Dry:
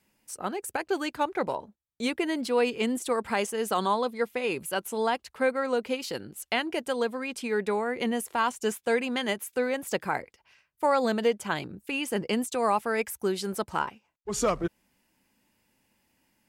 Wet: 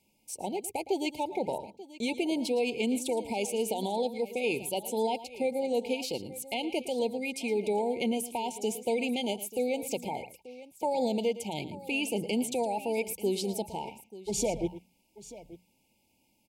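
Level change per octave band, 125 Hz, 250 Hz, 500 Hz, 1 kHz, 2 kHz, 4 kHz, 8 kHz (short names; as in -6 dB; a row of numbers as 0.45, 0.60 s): -1.5, -1.0, -2.0, -6.0, -7.0, -1.5, 0.0 dB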